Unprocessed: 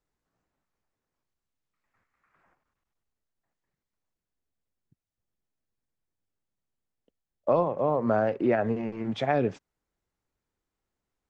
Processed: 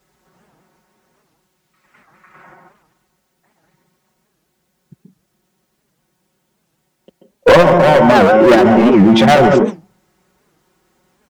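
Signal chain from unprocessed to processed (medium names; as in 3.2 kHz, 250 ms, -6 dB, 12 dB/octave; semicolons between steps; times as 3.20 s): high-pass 69 Hz 12 dB/octave; comb 5.4 ms, depth 99%; in parallel at +2 dB: gain riding 0.5 s; on the sum: overload inside the chain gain 19 dB; on a send at -4 dB: reverberation RT60 0.30 s, pre-delay 132 ms; on the sum: loudness maximiser +16 dB; warped record 78 rpm, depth 250 cents; trim -1 dB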